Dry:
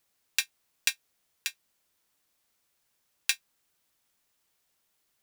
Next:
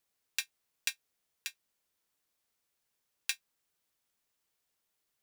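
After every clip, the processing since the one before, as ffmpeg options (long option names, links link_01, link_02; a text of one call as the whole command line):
ffmpeg -i in.wav -af "equalizer=frequency=450:width_type=o:width=0.23:gain=3,volume=-7dB" out.wav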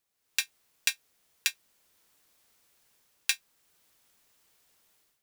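ffmpeg -i in.wav -af "alimiter=limit=-13dB:level=0:latency=1:release=96,dynaudnorm=framelen=120:gausssize=5:maxgain=14dB" out.wav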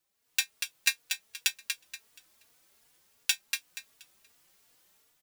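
ffmpeg -i in.wav -filter_complex "[0:a]aecho=1:1:238|476|714|952:0.501|0.14|0.0393|0.011,asplit=2[link_01][link_02];[link_02]adelay=3.5,afreqshift=2.7[link_03];[link_01][link_03]amix=inputs=2:normalize=1,volume=4dB" out.wav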